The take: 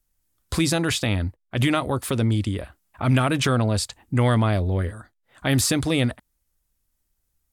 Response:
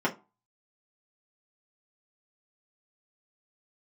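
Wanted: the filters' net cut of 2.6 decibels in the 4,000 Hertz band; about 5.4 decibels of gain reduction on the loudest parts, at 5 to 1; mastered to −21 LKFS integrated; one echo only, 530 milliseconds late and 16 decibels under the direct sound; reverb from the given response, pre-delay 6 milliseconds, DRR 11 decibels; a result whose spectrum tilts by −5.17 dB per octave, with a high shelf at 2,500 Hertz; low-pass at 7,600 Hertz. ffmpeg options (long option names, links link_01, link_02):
-filter_complex "[0:a]lowpass=7600,highshelf=frequency=2500:gain=6,equalizer=frequency=4000:width_type=o:gain=-8.5,acompressor=threshold=-21dB:ratio=5,aecho=1:1:530:0.158,asplit=2[link_01][link_02];[1:a]atrim=start_sample=2205,adelay=6[link_03];[link_02][link_03]afir=irnorm=-1:irlink=0,volume=-22dB[link_04];[link_01][link_04]amix=inputs=2:normalize=0,volume=5dB"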